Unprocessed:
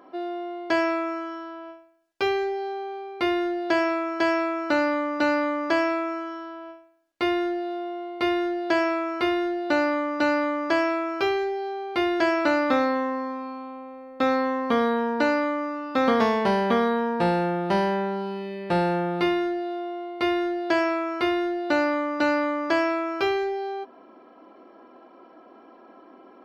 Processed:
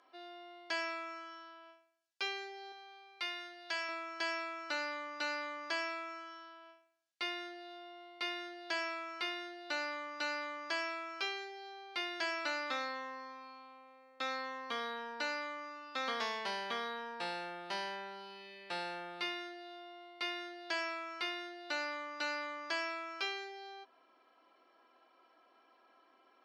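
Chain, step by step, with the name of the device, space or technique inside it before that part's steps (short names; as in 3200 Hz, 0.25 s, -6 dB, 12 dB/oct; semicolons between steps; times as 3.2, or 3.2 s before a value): piezo pickup straight into a mixer (LPF 5600 Hz 12 dB/oct; differentiator); 2.72–3.89 low shelf 490 Hz -11.5 dB; gain +2 dB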